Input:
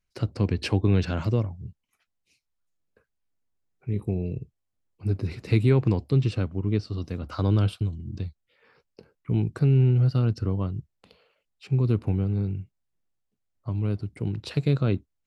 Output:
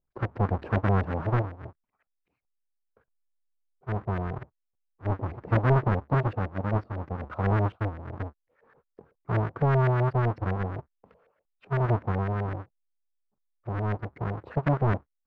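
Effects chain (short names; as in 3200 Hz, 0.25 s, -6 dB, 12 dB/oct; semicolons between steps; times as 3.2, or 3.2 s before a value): half-waves squared off; LFO low-pass saw up 7.9 Hz 600–1900 Hz; gain -7.5 dB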